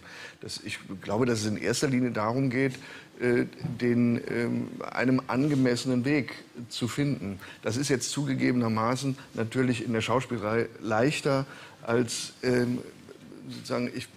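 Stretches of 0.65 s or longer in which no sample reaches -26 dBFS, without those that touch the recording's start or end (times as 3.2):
12.8–13.7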